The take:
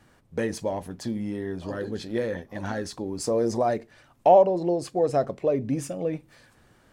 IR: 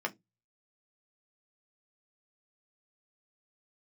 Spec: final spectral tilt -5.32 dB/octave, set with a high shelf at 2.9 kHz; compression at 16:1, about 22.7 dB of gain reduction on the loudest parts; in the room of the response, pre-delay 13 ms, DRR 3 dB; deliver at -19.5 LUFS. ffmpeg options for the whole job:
-filter_complex "[0:a]highshelf=f=2900:g=-9,acompressor=threshold=0.0178:ratio=16,asplit=2[s0][s1];[1:a]atrim=start_sample=2205,adelay=13[s2];[s1][s2]afir=irnorm=-1:irlink=0,volume=0.376[s3];[s0][s3]amix=inputs=2:normalize=0,volume=9.44"

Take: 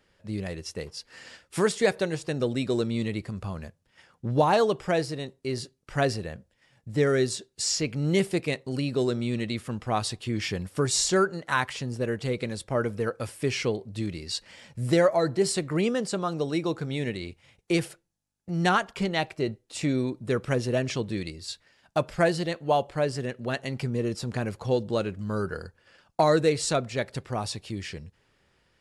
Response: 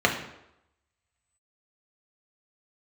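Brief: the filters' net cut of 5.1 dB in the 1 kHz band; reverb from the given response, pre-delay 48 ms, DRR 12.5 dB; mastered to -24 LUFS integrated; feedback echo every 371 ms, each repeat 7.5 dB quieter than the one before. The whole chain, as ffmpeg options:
-filter_complex "[0:a]equalizer=f=1000:t=o:g=-7.5,aecho=1:1:371|742|1113|1484|1855:0.422|0.177|0.0744|0.0312|0.0131,asplit=2[s0][s1];[1:a]atrim=start_sample=2205,adelay=48[s2];[s1][s2]afir=irnorm=-1:irlink=0,volume=0.0335[s3];[s0][s3]amix=inputs=2:normalize=0,volume=1.68"

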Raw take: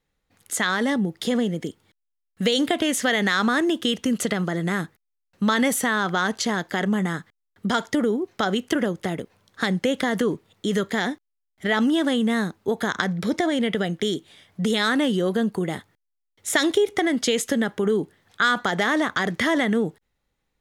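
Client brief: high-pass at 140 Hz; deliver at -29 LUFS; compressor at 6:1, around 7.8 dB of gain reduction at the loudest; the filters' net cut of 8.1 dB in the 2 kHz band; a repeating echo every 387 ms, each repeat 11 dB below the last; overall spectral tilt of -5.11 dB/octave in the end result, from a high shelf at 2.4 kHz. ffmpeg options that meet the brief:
-af "highpass=140,equalizer=f=2000:t=o:g=-7.5,highshelf=f=2400:g=-7,acompressor=threshold=0.0447:ratio=6,aecho=1:1:387|774|1161:0.282|0.0789|0.0221,volume=1.41"

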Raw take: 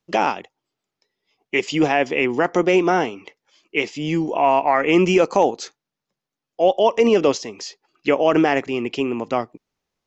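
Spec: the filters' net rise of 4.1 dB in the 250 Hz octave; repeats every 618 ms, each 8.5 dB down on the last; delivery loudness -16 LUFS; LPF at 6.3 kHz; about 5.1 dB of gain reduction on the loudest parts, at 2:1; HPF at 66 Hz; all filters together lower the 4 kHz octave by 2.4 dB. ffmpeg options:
-af "highpass=66,lowpass=6300,equalizer=f=250:t=o:g=6,equalizer=f=4000:t=o:g=-3.5,acompressor=threshold=0.126:ratio=2,aecho=1:1:618|1236|1854|2472:0.376|0.143|0.0543|0.0206,volume=1.88"

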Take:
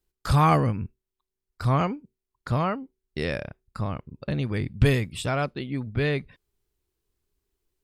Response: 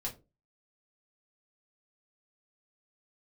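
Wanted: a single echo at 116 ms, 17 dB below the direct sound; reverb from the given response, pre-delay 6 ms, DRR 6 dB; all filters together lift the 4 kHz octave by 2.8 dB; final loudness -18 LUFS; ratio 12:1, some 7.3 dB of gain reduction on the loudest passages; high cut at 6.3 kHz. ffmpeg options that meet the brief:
-filter_complex "[0:a]lowpass=6300,equalizer=f=4000:t=o:g=4,acompressor=threshold=0.0891:ratio=12,aecho=1:1:116:0.141,asplit=2[s0][s1];[1:a]atrim=start_sample=2205,adelay=6[s2];[s1][s2]afir=irnorm=-1:irlink=0,volume=0.473[s3];[s0][s3]amix=inputs=2:normalize=0,volume=3.35"

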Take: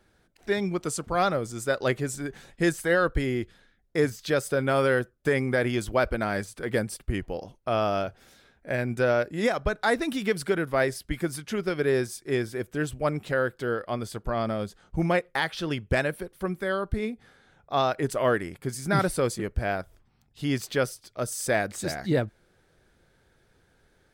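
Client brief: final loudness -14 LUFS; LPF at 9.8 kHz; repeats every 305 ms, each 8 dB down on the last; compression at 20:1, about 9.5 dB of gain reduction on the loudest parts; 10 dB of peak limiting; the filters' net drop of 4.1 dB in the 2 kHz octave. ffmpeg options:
-af "lowpass=9800,equalizer=f=2000:t=o:g=-5.5,acompressor=threshold=0.0398:ratio=20,alimiter=level_in=1.5:limit=0.0631:level=0:latency=1,volume=0.668,aecho=1:1:305|610|915|1220|1525:0.398|0.159|0.0637|0.0255|0.0102,volume=15"

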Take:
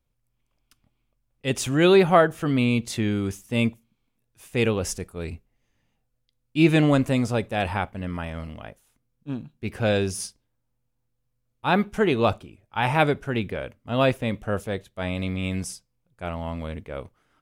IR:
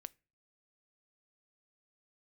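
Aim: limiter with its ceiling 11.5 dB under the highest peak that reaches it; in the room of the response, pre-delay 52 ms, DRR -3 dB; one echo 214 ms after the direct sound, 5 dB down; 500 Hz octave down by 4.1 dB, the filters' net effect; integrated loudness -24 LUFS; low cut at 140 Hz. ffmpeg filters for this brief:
-filter_complex "[0:a]highpass=140,equalizer=f=500:t=o:g=-5.5,alimiter=limit=0.15:level=0:latency=1,aecho=1:1:214:0.562,asplit=2[s0][s1];[1:a]atrim=start_sample=2205,adelay=52[s2];[s1][s2]afir=irnorm=-1:irlink=0,volume=2.66[s3];[s0][s3]amix=inputs=2:normalize=0"

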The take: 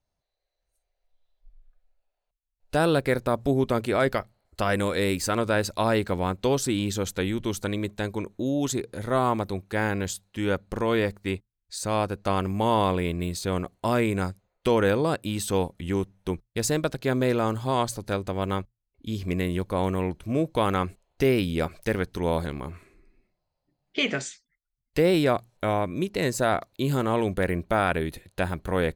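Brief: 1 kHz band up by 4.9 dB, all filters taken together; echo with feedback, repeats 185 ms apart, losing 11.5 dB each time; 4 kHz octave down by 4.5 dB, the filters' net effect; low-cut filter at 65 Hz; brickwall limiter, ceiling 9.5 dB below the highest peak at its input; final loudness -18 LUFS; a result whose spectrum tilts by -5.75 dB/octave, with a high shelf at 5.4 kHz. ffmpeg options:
-af "highpass=65,equalizer=f=1000:t=o:g=6.5,equalizer=f=4000:t=o:g=-5,highshelf=f=5400:g=-3.5,alimiter=limit=0.15:level=0:latency=1,aecho=1:1:185|370|555:0.266|0.0718|0.0194,volume=3.35"

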